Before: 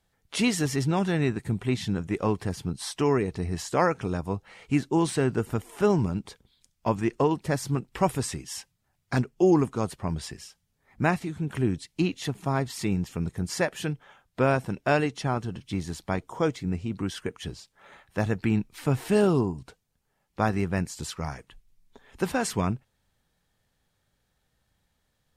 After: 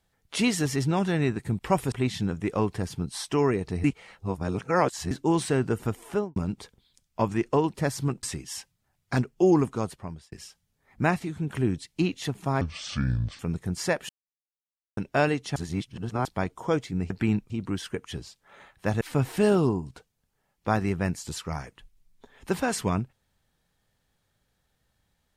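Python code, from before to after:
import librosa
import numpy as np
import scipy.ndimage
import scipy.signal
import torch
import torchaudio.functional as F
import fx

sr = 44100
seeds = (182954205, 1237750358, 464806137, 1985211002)

y = fx.studio_fade_out(x, sr, start_s=5.72, length_s=0.31)
y = fx.edit(y, sr, fx.reverse_span(start_s=3.51, length_s=1.27),
    fx.move(start_s=7.9, length_s=0.33, to_s=1.59),
    fx.fade_out_span(start_s=9.74, length_s=0.58),
    fx.speed_span(start_s=12.61, length_s=0.5, speed=0.64),
    fx.silence(start_s=13.81, length_s=0.88),
    fx.reverse_span(start_s=15.28, length_s=0.69),
    fx.move(start_s=18.33, length_s=0.4, to_s=16.82), tone=tone)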